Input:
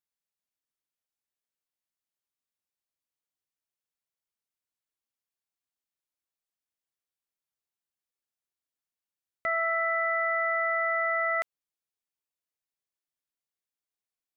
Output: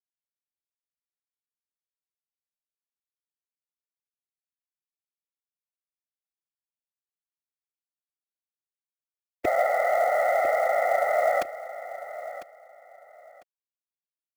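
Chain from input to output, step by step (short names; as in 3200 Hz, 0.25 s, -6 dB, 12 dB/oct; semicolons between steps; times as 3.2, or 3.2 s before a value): spectral limiter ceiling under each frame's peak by 22 dB; HPF 57 Hz 6 dB/oct; resonant low shelf 740 Hz +8.5 dB, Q 3; whisperiser; companded quantiser 6-bit; on a send: feedback echo 1 s, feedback 22%, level -14 dB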